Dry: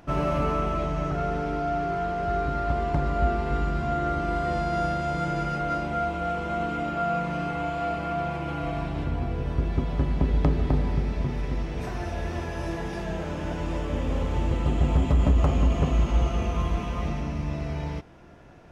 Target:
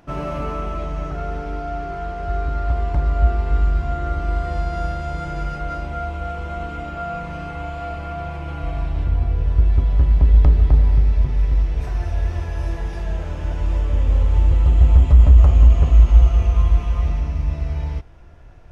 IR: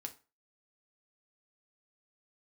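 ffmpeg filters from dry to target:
-af "asubboost=boost=7.5:cutoff=73,volume=-1dB"

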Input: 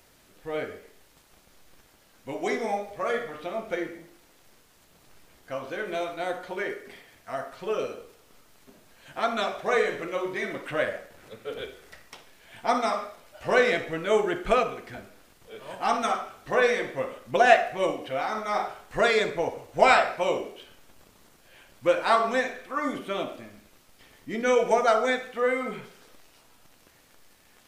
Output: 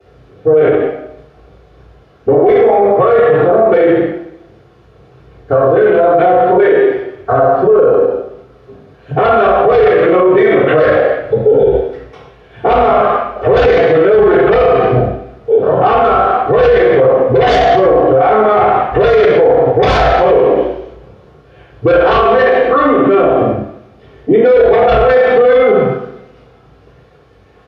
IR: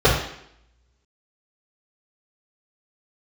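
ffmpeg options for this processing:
-filter_complex "[0:a]highpass=63,aemphasis=mode=reproduction:type=75kf,afwtdn=0.0126,acrossover=split=220|1200|2800[link_01][link_02][link_03][link_04];[link_01]acompressor=threshold=-55dB:ratio=6[link_05];[link_05][link_02][link_03][link_04]amix=inputs=4:normalize=0,aeval=exprs='0.596*sin(PI/2*5.01*val(0)/0.596)':channel_layout=same,asplit=2[link_06][link_07];[link_07]adelay=33,volume=-11dB[link_08];[link_06][link_08]amix=inputs=2:normalize=0[link_09];[1:a]atrim=start_sample=2205,asetrate=42336,aresample=44100[link_10];[link_09][link_10]afir=irnorm=-1:irlink=0,alimiter=level_in=-10.5dB:limit=-1dB:release=50:level=0:latency=1,volume=-1dB"

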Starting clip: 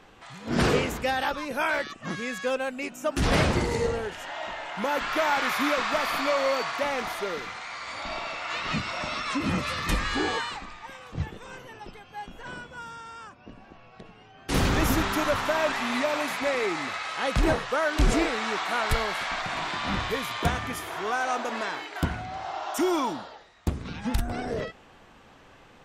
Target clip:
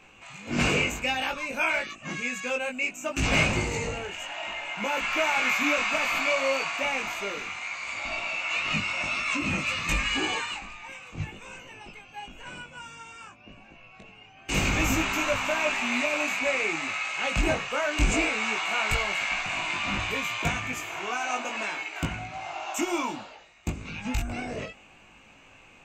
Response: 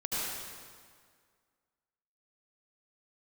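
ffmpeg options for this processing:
-af "superequalizer=7b=0.708:12b=3.55:15b=2.51:16b=0.355,flanger=delay=18.5:depth=2.1:speed=0.59"

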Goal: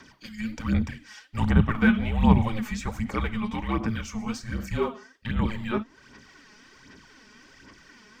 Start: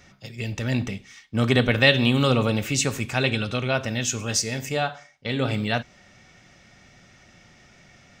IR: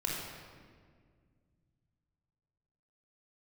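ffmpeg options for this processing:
-filter_complex "[0:a]acrossover=split=100|1500[link_01][link_02][link_03];[link_02]aemphasis=mode=production:type=riaa[link_04];[link_03]acompressor=threshold=-43dB:ratio=10[link_05];[link_01][link_04][link_05]amix=inputs=3:normalize=0,afreqshift=-330,aphaser=in_gain=1:out_gain=1:delay=4.8:decay=0.59:speed=1.3:type=sinusoidal"

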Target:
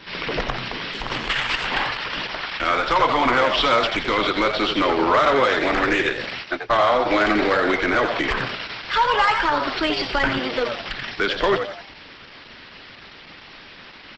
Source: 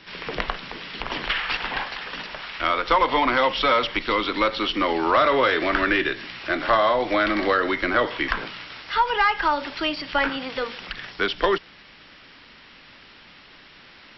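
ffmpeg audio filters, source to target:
ffmpeg -i in.wav -filter_complex "[0:a]asplit=3[link_01][link_02][link_03];[link_01]afade=type=out:start_time=6.43:duration=0.02[link_04];[link_02]agate=range=-46dB:threshold=-21dB:ratio=16:detection=peak,afade=type=in:start_time=6.43:duration=0.02,afade=type=out:start_time=7.05:duration=0.02[link_05];[link_03]afade=type=in:start_time=7.05:duration=0.02[link_06];[link_04][link_05][link_06]amix=inputs=3:normalize=0,asettb=1/sr,asplit=3[link_07][link_08][link_09];[link_07]atrim=end=9.614[link_10];[link_08]atrim=start=9.61:end=10.39,asetpts=PTS-STARTPTS,afade=type=in:duration=0.004:curve=qsin,afade=type=out:start_time=0.776:duration=0.004:curve=qsin,asubboost=boost=5.5:cutoff=170[link_11];[link_09]atrim=start=10.386[link_12];[link_10][link_11]acrossfade=duration=0.004:curve1=hsin:curve2=qsin[link_13];[link_13][link_12]acrossfade=duration=0.004:curve1=qsin:curve2=hsin,asplit=2[link_14][link_15];[link_15]alimiter=limit=-17dB:level=0:latency=1:release=126,volume=1.5dB[link_16];[link_14][link_16]amix=inputs=2:normalize=0,asoftclip=type=tanh:threshold=-10dB,aresample=32000,aresample=44100,asplit=2[link_17][link_18];[link_18]asplit=5[link_19][link_20][link_21][link_22][link_23];[link_19]adelay=86,afreqshift=100,volume=-7dB[link_24];[link_20]adelay=172,afreqshift=200,volume=-15dB[link_25];[link_21]adelay=258,afreqshift=300,volume=-22.9dB[link_26];[link_22]adelay=344,afreqshift=400,volume=-30.9dB[link_27];[link_23]adelay=430,afreqshift=500,volume=-38.8dB[link_28];[link_24][link_25][link_26][link_27][link_28]amix=inputs=5:normalize=0[link_29];[link_17][link_29]amix=inputs=2:normalize=0,asettb=1/sr,asplit=3[link_30][link_31][link_32];[link_30]atrim=end=0.924[link_33];[link_31]atrim=start=0.92:end=1.68,asetpts=PTS-STARTPTS,afade=type=in:duration=0.004:curve=qsin,afade=type=out:start_time=0.756:duration=0.004:curve=qsin,aeval=exprs='0.355*(cos(1*acos(clip(val(0)/0.355,-1,1)))-cos(1*PI/2))+0.0282*(cos(3*acos(clip(val(0)/0.355,-1,1)))-cos(3*PI/2))+0.0141*(cos(6*acos(clip(val(0)/0.355,-1,1)))-cos(6*PI/2))':channel_layout=same[link_34];[link_32]atrim=start=1.676[link_35];[link_33][link_34]acrossfade=duration=0.004:curve1=hsin:curve2=qsin[link_36];[link_36][link_35]acrossfade=duration=0.004:curve1=qsin:curve2=hsin" -ar 48000 -c:a libopus -b:a 12k out.opus

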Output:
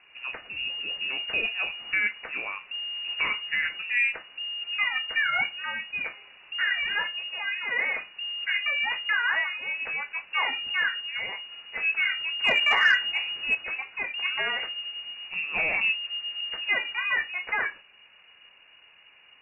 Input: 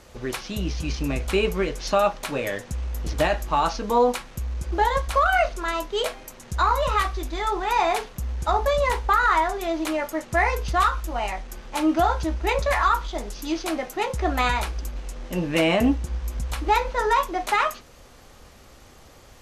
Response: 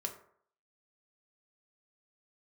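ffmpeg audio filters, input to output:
-filter_complex "[0:a]lowpass=frequency=2500:width_type=q:width=0.5098,lowpass=frequency=2500:width_type=q:width=0.6013,lowpass=frequency=2500:width_type=q:width=0.9,lowpass=frequency=2500:width_type=q:width=2.563,afreqshift=-2900,asettb=1/sr,asplit=3[link_01][link_02][link_03];[link_01]atrim=end=12.394[link_04];[link_02]atrim=start=12.39:end=13.55,asetpts=PTS-STARTPTS,afade=type=in:duration=0.004:curve=qsin,afade=type=out:start_time=1.156:duration=0.004:curve=qsin,acontrast=71[link_05];[link_03]atrim=start=13.546[link_06];[link_04][link_05]acrossfade=duration=0.004:curve1=hsin:curve2=qsin[link_07];[link_07][link_06]acrossfade=duration=0.004:curve1=qsin:curve2=hsin,volume=-6dB"

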